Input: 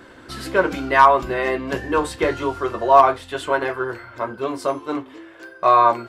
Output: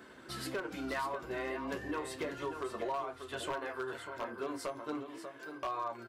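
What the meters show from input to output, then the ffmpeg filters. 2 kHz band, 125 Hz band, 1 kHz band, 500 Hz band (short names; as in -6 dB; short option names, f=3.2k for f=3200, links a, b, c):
-17.5 dB, -16.0 dB, -22.5 dB, -18.5 dB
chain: -af "flanger=delay=4.6:depth=8.3:regen=-34:speed=0.37:shape=sinusoidal,acompressor=threshold=-29dB:ratio=8,highpass=72,highshelf=f=9.5k:g=6,aecho=1:1:591:0.355,aeval=exprs='0.0668*(abs(mod(val(0)/0.0668+3,4)-2)-1)':c=same,volume=-5.5dB"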